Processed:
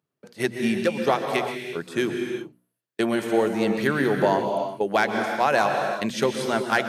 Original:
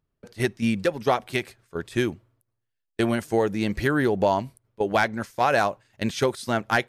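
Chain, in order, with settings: high-pass 140 Hz 24 dB/octave; hum notches 60/120/180/240/300 Hz; reverberation, pre-delay 116 ms, DRR 4 dB

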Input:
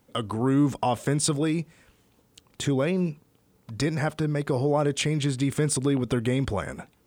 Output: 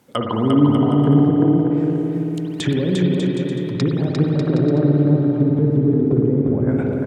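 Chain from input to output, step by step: low-pass that closes with the level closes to 310 Hz, closed at -22.5 dBFS; high-pass 120 Hz; bouncing-ball echo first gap 350 ms, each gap 0.7×, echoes 5; spring tank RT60 3.2 s, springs 55 ms, chirp 50 ms, DRR 0 dB; trim +7.5 dB

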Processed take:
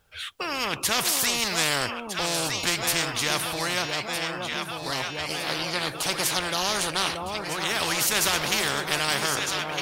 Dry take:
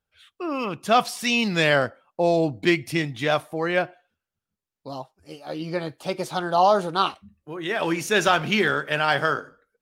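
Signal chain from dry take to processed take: peaking EQ 230 Hz -5 dB; echo whose repeats swap between lows and highs 629 ms, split 900 Hz, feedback 68%, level -11.5 dB; spectrum-flattening compressor 4:1

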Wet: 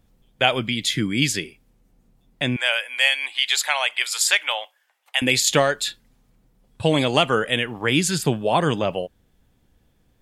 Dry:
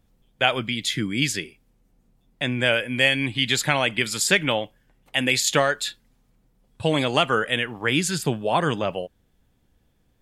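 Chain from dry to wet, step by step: 2.56–5.22 s: high-pass 750 Hz 24 dB/octave; dynamic bell 1.5 kHz, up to -4 dB, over -33 dBFS, Q 1.3; trim +3 dB

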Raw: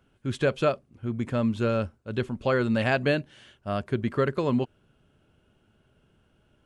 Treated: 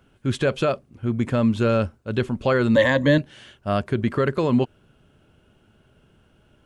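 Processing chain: peak limiter -17.5 dBFS, peak gain reduction 6.5 dB; 2.75–3.18 s: rippled EQ curve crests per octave 1.1, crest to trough 18 dB; trim +6.5 dB

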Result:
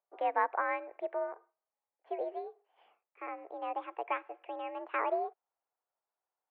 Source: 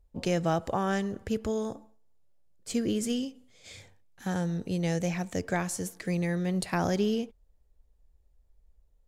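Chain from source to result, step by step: gliding tape speed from 126% -> 153%; mistuned SSB +64 Hz 410–2300 Hz; upward expansion 1.5:1, over -40 dBFS

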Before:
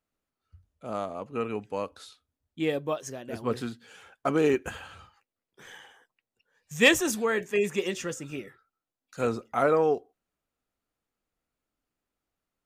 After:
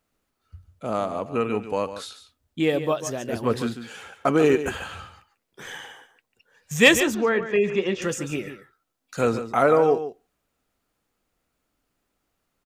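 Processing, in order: in parallel at +1 dB: compression, threshold -37 dBFS, peak gain reduction 21 dB; 7.00–8.02 s: on the sum: distance through air 210 m; delay 144 ms -11.5 dB; trim +3.5 dB

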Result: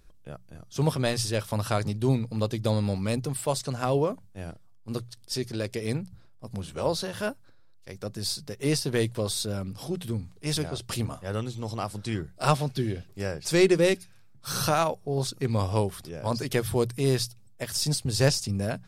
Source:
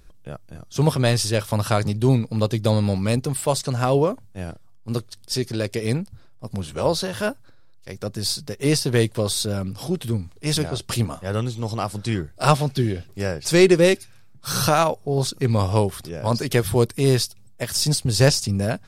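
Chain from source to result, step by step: hum notches 60/120/180 Hz; trim -6 dB

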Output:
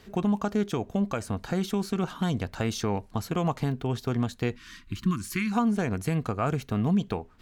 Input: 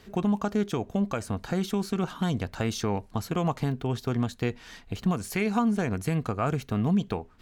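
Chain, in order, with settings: time-frequency box 4.56–5.52 s, 380–990 Hz -27 dB

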